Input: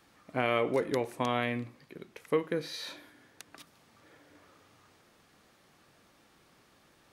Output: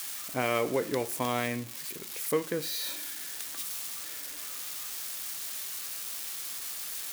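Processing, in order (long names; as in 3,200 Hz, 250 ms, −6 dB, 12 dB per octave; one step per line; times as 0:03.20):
spike at every zero crossing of −28.5 dBFS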